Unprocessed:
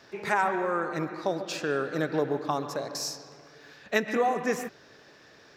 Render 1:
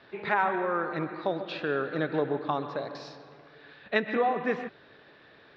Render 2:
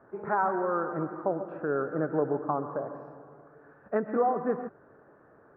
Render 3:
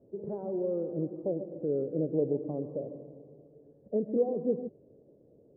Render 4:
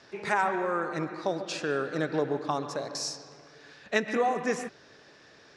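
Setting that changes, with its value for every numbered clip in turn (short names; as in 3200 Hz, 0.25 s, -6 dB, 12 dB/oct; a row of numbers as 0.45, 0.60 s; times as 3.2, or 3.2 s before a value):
Chebyshev low-pass, frequency: 3900, 1400, 540, 10000 Hz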